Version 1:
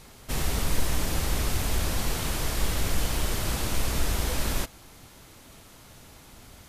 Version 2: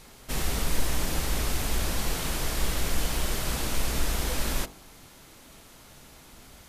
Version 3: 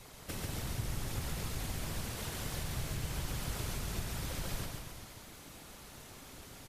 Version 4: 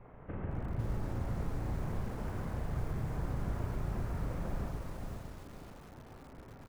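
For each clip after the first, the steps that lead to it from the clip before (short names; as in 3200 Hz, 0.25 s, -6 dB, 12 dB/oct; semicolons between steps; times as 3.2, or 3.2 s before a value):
bell 94 Hz -6.5 dB 0.64 oct; de-hum 48.33 Hz, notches 27
compressor 2.5:1, threshold -38 dBFS, peak gain reduction 14 dB; whisperiser; on a send: bouncing-ball echo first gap 0.14 s, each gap 0.9×, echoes 5; on the sum: gain -3 dB
Gaussian blur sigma 5.5 samples; doubler 35 ms -5 dB; lo-fi delay 0.507 s, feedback 35%, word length 9-bit, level -4.5 dB; gain +1 dB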